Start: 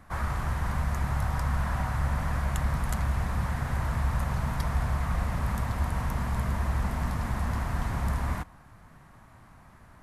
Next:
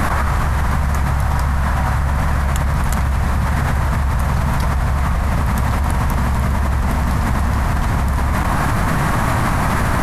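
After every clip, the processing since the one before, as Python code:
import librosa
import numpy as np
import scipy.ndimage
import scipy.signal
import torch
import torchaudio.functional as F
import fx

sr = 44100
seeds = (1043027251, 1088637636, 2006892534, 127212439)

y = fx.env_flatten(x, sr, amount_pct=100)
y = y * librosa.db_to_amplitude(6.5)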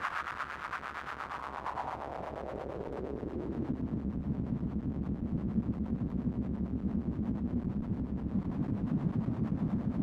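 y = fx.halfwave_hold(x, sr)
y = fx.filter_sweep_bandpass(y, sr, from_hz=1400.0, to_hz=220.0, start_s=1.03, end_s=4.09, q=2.5)
y = fx.harmonic_tremolo(y, sr, hz=8.6, depth_pct=70, crossover_hz=490.0)
y = y * librosa.db_to_amplitude(-8.5)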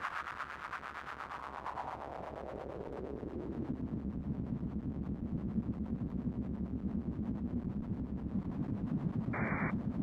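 y = fx.spec_paint(x, sr, seeds[0], shape='noise', start_s=9.33, length_s=0.38, low_hz=310.0, high_hz=2400.0, level_db=-35.0)
y = y * librosa.db_to_amplitude(-4.0)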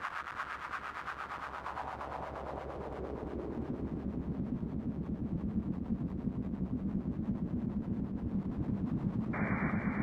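y = fx.echo_feedback(x, sr, ms=346, feedback_pct=60, wet_db=-4.0)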